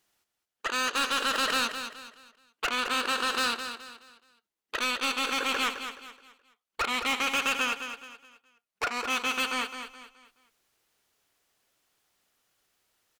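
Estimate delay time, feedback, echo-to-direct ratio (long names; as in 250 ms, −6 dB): 212 ms, 35%, −8.5 dB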